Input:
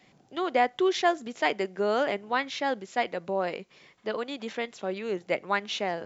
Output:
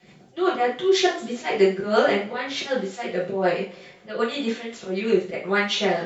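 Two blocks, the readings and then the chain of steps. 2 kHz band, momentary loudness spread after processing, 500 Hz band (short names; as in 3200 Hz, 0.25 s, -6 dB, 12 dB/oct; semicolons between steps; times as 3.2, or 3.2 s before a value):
+4.5 dB, 9 LU, +6.5 dB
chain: rotary speaker horn 8 Hz; auto swell 0.142 s; two-slope reverb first 0.37 s, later 2.4 s, from -28 dB, DRR -8 dB; gain +2.5 dB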